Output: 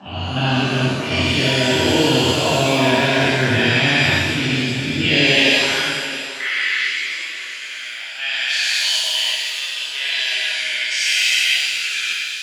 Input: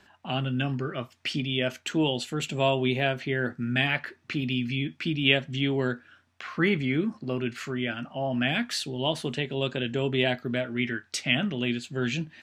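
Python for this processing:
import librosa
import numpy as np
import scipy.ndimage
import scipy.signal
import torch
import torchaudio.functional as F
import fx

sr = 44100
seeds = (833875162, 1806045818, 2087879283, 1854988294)

p1 = fx.spec_dilate(x, sr, span_ms=480)
p2 = scipy.signal.sosfilt(scipy.signal.butter(2, 7000.0, 'lowpass', fs=sr, output='sos'), p1)
p3 = fx.peak_eq(p2, sr, hz=100.0, db=5.0, octaves=0.69)
p4 = fx.level_steps(p3, sr, step_db=22)
p5 = p3 + (p4 * librosa.db_to_amplitude(1.0))
p6 = fx.filter_sweep_highpass(p5, sr, from_hz=81.0, to_hz=2200.0, start_s=5.04, end_s=5.98, q=0.97)
p7 = p6 + fx.echo_single(p6, sr, ms=671, db=-13.5, dry=0)
p8 = fx.rev_shimmer(p7, sr, seeds[0], rt60_s=1.1, semitones=7, shimmer_db=-8, drr_db=-3.5)
y = p8 * librosa.db_to_amplitude(-8.0)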